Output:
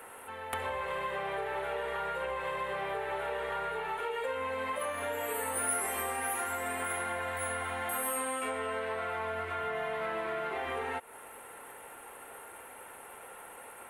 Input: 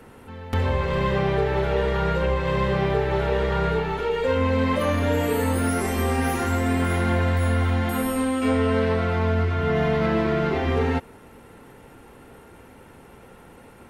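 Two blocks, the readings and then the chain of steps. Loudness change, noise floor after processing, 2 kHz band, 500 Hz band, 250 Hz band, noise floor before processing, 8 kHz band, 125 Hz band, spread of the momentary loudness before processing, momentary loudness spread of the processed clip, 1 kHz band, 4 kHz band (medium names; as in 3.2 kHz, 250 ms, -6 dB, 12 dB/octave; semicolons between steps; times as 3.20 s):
-11.5 dB, -49 dBFS, -6.5 dB, -12.5 dB, -23.0 dB, -48 dBFS, +1.5 dB, -28.0 dB, 3 LU, 15 LU, -6.5 dB, -10.0 dB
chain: three-band isolator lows -23 dB, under 520 Hz, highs -12 dB, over 4.6 kHz; compression, threshold -36 dBFS, peak gain reduction 12.5 dB; resonant high shelf 7.2 kHz +13 dB, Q 3; trim +3.5 dB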